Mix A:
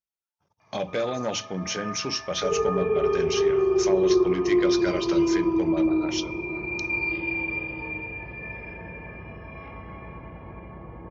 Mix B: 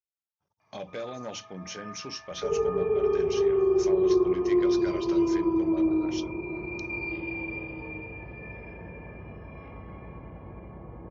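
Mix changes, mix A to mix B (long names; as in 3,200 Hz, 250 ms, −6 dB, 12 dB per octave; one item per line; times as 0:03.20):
speech −7.5 dB
first sound −5.5 dB
reverb: off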